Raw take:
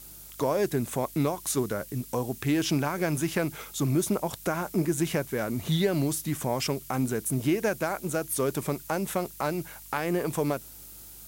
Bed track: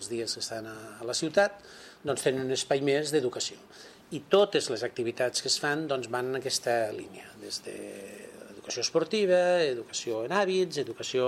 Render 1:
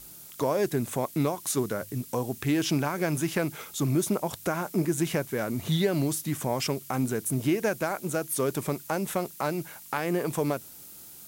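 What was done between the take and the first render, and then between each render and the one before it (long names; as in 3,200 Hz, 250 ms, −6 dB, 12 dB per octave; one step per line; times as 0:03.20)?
hum removal 50 Hz, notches 2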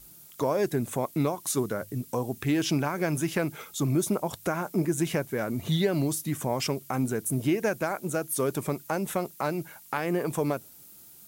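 broadband denoise 6 dB, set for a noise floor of −47 dBFS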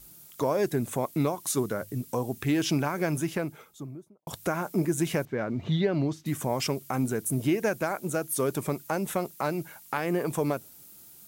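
0:02.97–0:04.27: fade out and dull
0:05.25–0:06.26: high-frequency loss of the air 190 metres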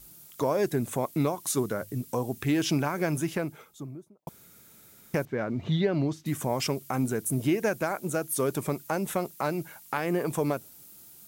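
0:04.29–0:05.14: fill with room tone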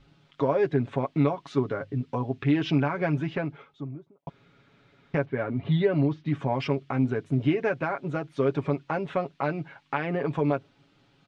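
low-pass filter 3,400 Hz 24 dB per octave
comb filter 7.2 ms, depth 62%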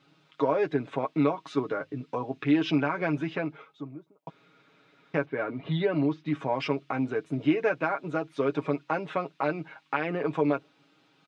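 high-pass filter 250 Hz 12 dB per octave
comb filter 6.4 ms, depth 44%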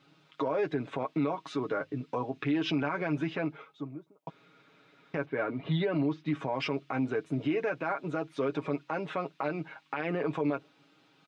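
brickwall limiter −21 dBFS, peak gain reduction 9.5 dB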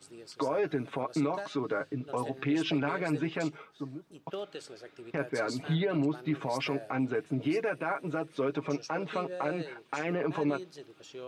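mix in bed track −16.5 dB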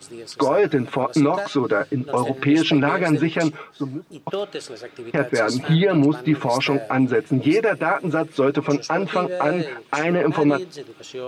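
level +12 dB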